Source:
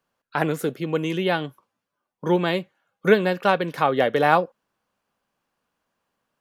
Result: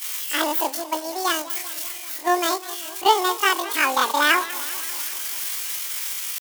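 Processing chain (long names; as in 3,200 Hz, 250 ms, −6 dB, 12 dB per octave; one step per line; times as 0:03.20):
spike at every zero crossing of −12 dBFS
noise gate −21 dBFS, range −11 dB
on a send at −21 dB: convolution reverb RT60 0.60 s, pre-delay 6 ms
on the sum: pitch shifter +12 semitones
feedback echo with a swinging delay time 196 ms, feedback 67%, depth 201 cents, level −16.5 dB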